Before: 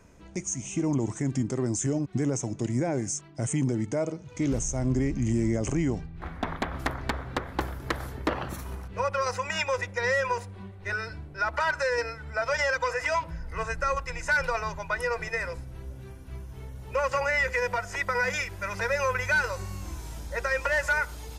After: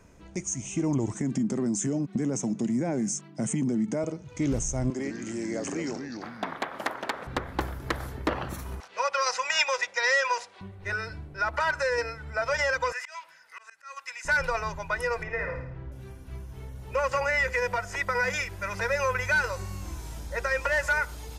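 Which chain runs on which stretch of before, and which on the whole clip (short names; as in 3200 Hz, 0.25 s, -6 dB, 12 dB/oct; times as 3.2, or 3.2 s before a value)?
1.14–4.04 HPF 140 Hz 24 dB/oct + bell 210 Hz +13 dB 0.48 oct + compressor 3:1, threshold -24 dBFS
4.9–7.27 HPF 380 Hz + echoes that change speed 81 ms, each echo -3 st, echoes 2, each echo -6 dB
8.8–10.61 Chebyshev band-pass 630–5600 Hz + high shelf 2100 Hz +10.5 dB
12.92–14.25 HPF 1500 Hz + auto swell 0.224 s
15.23–15.92 LPF 2100 Hz + flutter echo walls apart 9.3 m, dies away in 0.62 s
whole clip: dry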